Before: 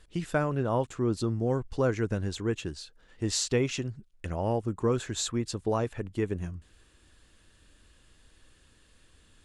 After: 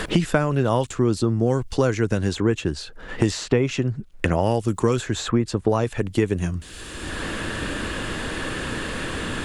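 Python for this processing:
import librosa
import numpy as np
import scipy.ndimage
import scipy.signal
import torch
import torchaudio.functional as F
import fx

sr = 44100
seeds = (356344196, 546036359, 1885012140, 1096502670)

y = fx.band_squash(x, sr, depth_pct=100)
y = F.gain(torch.from_numpy(y), 8.0).numpy()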